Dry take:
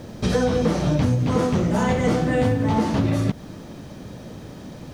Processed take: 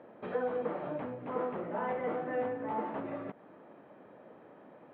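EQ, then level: Gaussian low-pass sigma 4.1 samples; high-pass 490 Hz 12 dB/octave; distance through air 180 m; -7.0 dB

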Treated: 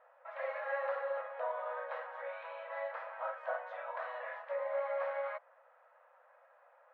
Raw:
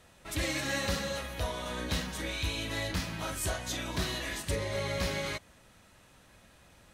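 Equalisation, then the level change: brick-wall FIR high-pass 480 Hz; low-pass 1.5 kHz 24 dB/octave; +1.0 dB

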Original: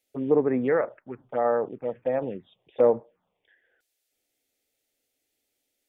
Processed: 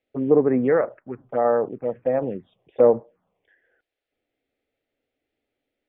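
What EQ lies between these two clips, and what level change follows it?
distance through air 490 m; band-stop 890 Hz, Q 17; +5.5 dB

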